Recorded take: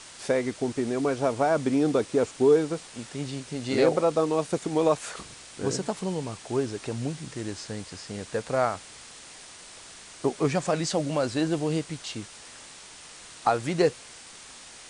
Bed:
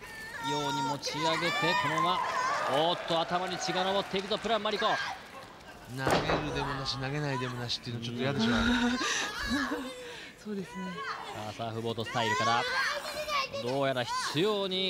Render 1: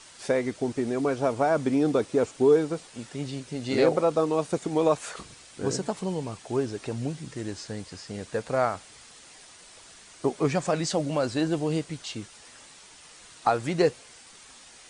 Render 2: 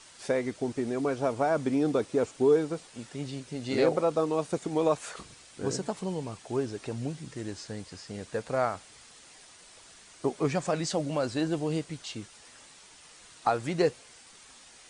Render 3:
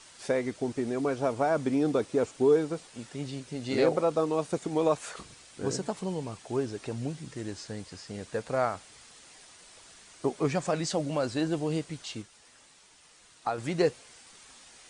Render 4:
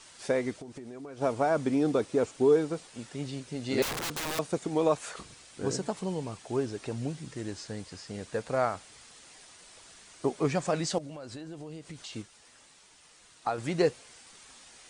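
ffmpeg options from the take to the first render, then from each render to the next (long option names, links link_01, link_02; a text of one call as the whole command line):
ffmpeg -i in.wav -af "afftdn=noise_reduction=6:noise_floor=-47" out.wav
ffmpeg -i in.wav -af "volume=-3dB" out.wav
ffmpeg -i in.wav -filter_complex "[0:a]asplit=3[link_01][link_02][link_03];[link_01]atrim=end=12.222[link_04];[link_02]atrim=start=12.218:end=13.582,asetpts=PTS-STARTPTS,volume=-5dB[link_05];[link_03]atrim=start=13.578[link_06];[link_04][link_05]acrossfade=duration=0.004:curve1=hsin:curve2=hsin[link_07];[link_07][link_06]acrossfade=duration=0.004:curve1=hsin:curve2=hsin" out.wav
ffmpeg -i in.wav -filter_complex "[0:a]asplit=3[link_01][link_02][link_03];[link_01]afade=type=out:start_time=0.57:duration=0.02[link_04];[link_02]acompressor=threshold=-40dB:ratio=8:attack=3.2:release=140:knee=1:detection=peak,afade=type=in:start_time=0.57:duration=0.02,afade=type=out:start_time=1.2:duration=0.02[link_05];[link_03]afade=type=in:start_time=1.2:duration=0.02[link_06];[link_04][link_05][link_06]amix=inputs=3:normalize=0,asettb=1/sr,asplit=3[link_07][link_08][link_09];[link_07]atrim=end=3.824[link_10];[link_08]atrim=start=3.82:end=4.39,asetpts=PTS-STARTPTS,afade=type=in:duration=0.004:curve=qsin,afade=type=out:start_time=0.566:duration=0.004:curve=qsin,aeval=exprs='(mod(26.6*val(0)+1,2)-1)/26.6':channel_layout=same[link_11];[link_09]atrim=start=4.386[link_12];[link_10][link_11]acrossfade=duration=0.004:curve1=hsin:curve2=qsin[link_13];[link_13][link_12]acrossfade=duration=0.004:curve1=qsin:curve2=hsin,asettb=1/sr,asplit=3[link_14][link_15][link_16];[link_14]atrim=end=10.984[link_17];[link_15]atrim=start=10.98:end=12.13,asetpts=PTS-STARTPTS,afade=type=in:duration=0.004:curve=qsin,afade=type=out:start_time=1.146:duration=0.004:curve=qsin,acompressor=threshold=-38dB:ratio=16:attack=3.2:release=140:knee=1:detection=peak[link_18];[link_16]atrim=start=12.126[link_19];[link_17][link_18]acrossfade=duration=0.004:curve1=hsin:curve2=qsin[link_20];[link_20][link_19]acrossfade=duration=0.004:curve1=qsin:curve2=hsin" out.wav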